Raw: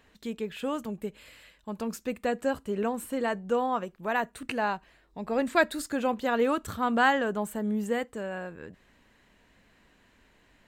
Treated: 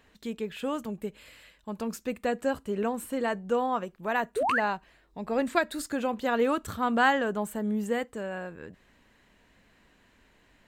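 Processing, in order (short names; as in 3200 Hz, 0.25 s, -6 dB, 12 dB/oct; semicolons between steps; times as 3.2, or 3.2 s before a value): 4.36–4.6 painted sound rise 390–2100 Hz -26 dBFS; 5.58–6.14 compressor 3:1, threshold -24 dBFS, peak gain reduction 5.5 dB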